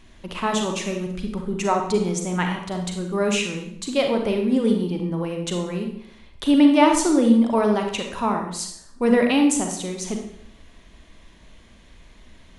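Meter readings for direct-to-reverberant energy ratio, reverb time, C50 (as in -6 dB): 3.0 dB, 0.70 s, 5.0 dB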